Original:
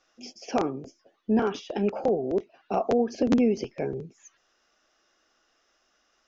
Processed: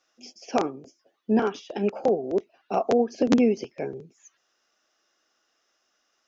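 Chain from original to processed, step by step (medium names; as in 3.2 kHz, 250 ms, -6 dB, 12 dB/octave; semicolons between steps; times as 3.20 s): high-pass 160 Hz 6 dB/octave; treble shelf 4.8 kHz +5 dB; upward expansion 1.5:1, over -36 dBFS; trim +4 dB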